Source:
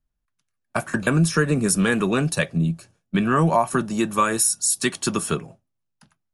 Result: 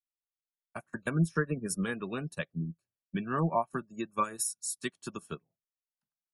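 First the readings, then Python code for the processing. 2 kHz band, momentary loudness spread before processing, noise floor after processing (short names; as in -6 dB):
-13.0 dB, 8 LU, under -85 dBFS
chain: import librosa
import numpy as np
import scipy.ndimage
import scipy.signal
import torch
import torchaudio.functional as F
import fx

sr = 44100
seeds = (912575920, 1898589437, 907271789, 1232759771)

y = fx.spec_gate(x, sr, threshold_db=-30, keep='strong')
y = fx.upward_expand(y, sr, threshold_db=-36.0, expansion=2.5)
y = y * 10.0 ** (-7.0 / 20.0)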